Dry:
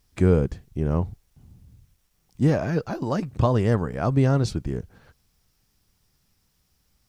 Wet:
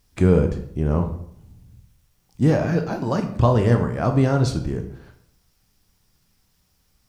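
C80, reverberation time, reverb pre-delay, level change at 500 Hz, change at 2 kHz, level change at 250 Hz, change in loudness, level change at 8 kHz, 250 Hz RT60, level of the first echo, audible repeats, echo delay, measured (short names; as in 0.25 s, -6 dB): 13.0 dB, 0.70 s, 15 ms, +3.0 dB, +3.0 dB, +3.0 dB, +3.0 dB, +3.0 dB, 0.70 s, none, none, none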